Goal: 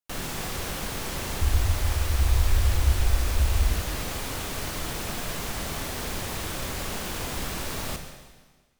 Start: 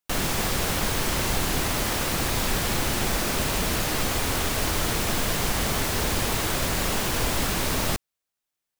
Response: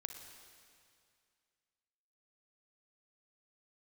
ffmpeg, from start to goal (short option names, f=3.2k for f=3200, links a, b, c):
-filter_complex "[0:a]asettb=1/sr,asplit=3[a][b][c];[a]atrim=end=1.414[d];[b]atrim=start=1.41:end=3.7,asetpts=PTS-STARTPTS,afade=t=in:d=0.004:c=qsin,afade=t=out:st=2.286:d=0.004:c=qsin,lowshelf=f=110:t=q:w=3:g=12.5[e];[c]atrim=start=3.696[f];[d][e]acrossfade=d=0.004:c1=hsin:c2=qsin[g];[g][f]acrossfade=d=0.004:c1=qsin:c2=hsin[h];[1:a]atrim=start_sample=2205,asetrate=70560,aresample=44100[i];[h][i]afir=irnorm=-1:irlink=0"